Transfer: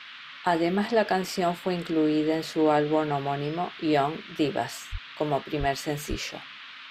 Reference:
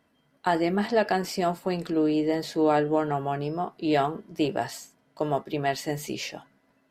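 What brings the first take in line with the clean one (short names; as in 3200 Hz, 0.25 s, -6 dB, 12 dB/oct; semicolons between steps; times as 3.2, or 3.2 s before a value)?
4.91–5.03 HPF 140 Hz 24 dB/oct; 5.59–5.71 HPF 140 Hz 24 dB/oct; 6.09–6.21 HPF 140 Hz 24 dB/oct; noise print and reduce 22 dB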